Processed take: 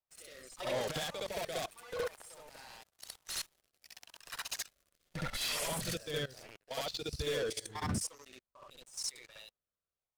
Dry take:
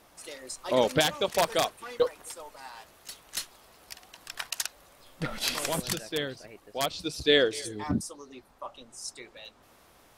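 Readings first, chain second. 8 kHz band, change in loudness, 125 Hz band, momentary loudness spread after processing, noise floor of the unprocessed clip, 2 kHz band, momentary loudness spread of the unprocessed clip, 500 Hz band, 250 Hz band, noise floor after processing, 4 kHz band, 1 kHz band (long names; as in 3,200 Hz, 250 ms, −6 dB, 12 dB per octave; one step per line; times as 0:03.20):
−5.0 dB, −9.0 dB, −4.0 dB, 19 LU, −60 dBFS, −9.0 dB, 22 LU, −10.5 dB, −10.5 dB, below −85 dBFS, −8.5 dB, −10.0 dB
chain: spectral magnitudes quantised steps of 15 dB
parametric band 280 Hz −12 dB 0.99 octaves
leveller curve on the samples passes 5
rotating-speaker cabinet horn 0.85 Hz
output level in coarse steps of 23 dB
brickwall limiter −21 dBFS, peak gain reduction 9.5 dB
backwards echo 66 ms −3.5 dB
level −8 dB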